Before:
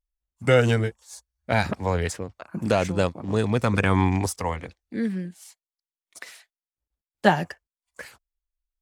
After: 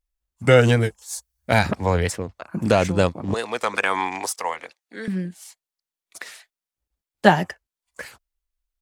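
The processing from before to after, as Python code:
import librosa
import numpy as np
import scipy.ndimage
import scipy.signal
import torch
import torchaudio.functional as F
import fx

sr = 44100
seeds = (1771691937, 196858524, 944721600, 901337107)

y = fx.high_shelf(x, sr, hz=6400.0, db=12.0, at=(0.81, 1.59))
y = fx.highpass(y, sr, hz=620.0, slope=12, at=(3.34, 5.08))
y = fx.record_warp(y, sr, rpm=45.0, depth_cents=100.0)
y = F.gain(torch.from_numpy(y), 4.0).numpy()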